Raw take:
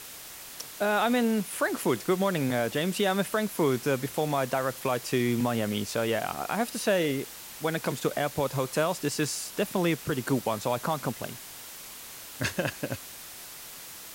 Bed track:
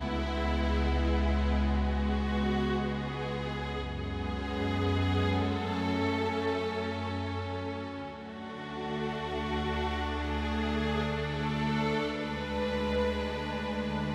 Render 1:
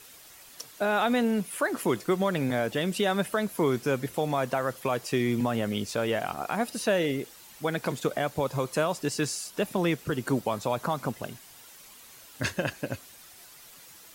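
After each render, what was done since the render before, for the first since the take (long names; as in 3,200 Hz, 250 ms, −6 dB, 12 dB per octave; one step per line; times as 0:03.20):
broadband denoise 9 dB, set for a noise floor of −44 dBFS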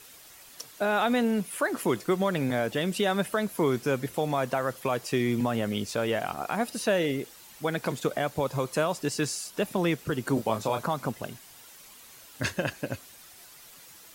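0:10.34–0:10.83: double-tracking delay 27 ms −5.5 dB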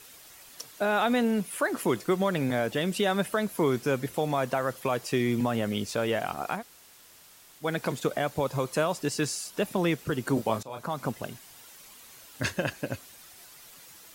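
0:06.58–0:07.63: fill with room tone, crossfade 0.10 s
0:10.63–0:11.07: fade in, from −20.5 dB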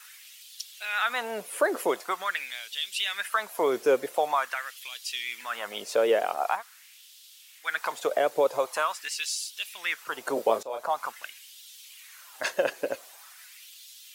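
pitch vibrato 6.3 Hz 35 cents
auto-filter high-pass sine 0.45 Hz 450–3,500 Hz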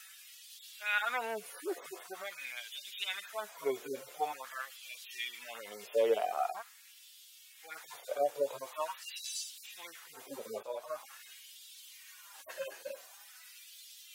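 harmonic-percussive split with one part muted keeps harmonic
parametric band 190 Hz −8.5 dB 2.9 octaves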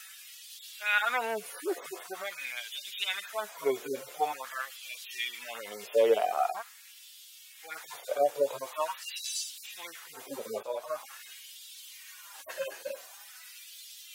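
level +5 dB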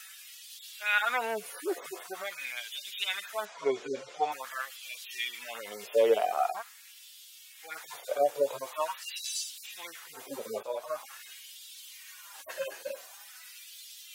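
0:03.45–0:04.32: low-pass filter 6,700 Hz 24 dB per octave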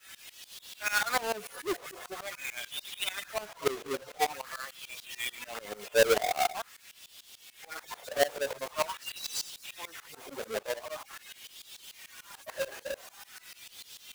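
each half-wave held at its own peak
shaped tremolo saw up 6.8 Hz, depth 95%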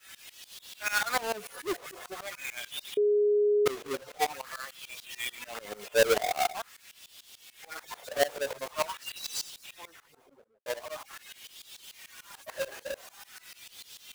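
0:02.97–0:03.66: beep over 415 Hz −21 dBFS
0:09.40–0:10.66: fade out and dull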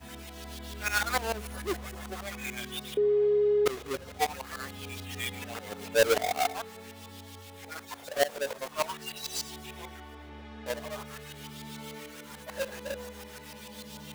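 mix in bed track −14 dB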